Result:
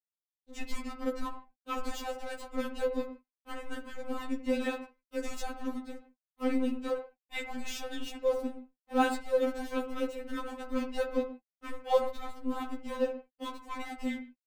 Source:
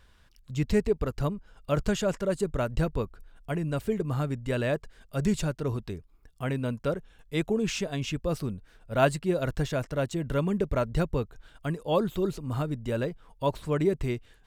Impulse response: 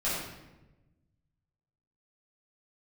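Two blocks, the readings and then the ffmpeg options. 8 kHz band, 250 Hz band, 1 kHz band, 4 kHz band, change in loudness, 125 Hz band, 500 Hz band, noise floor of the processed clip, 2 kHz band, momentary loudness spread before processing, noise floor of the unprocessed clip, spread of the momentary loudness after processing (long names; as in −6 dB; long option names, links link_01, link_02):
−6.0 dB, −5.0 dB, −1.5 dB, −4.0 dB, −5.5 dB, below −25 dB, −4.5 dB, below −85 dBFS, −3.5 dB, 9 LU, −59 dBFS, 13 LU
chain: -filter_complex "[0:a]aeval=exprs='sgn(val(0))*max(abs(val(0))-0.0126,0)':channel_layout=same,asplit=2[link_01][link_02];[1:a]atrim=start_sample=2205,afade=type=out:start_time=0.21:duration=0.01,atrim=end_sample=9702,lowpass=3200[link_03];[link_02][link_03]afir=irnorm=-1:irlink=0,volume=-15.5dB[link_04];[link_01][link_04]amix=inputs=2:normalize=0,afftfilt=real='re*3.46*eq(mod(b,12),0)':imag='im*3.46*eq(mod(b,12),0)':win_size=2048:overlap=0.75"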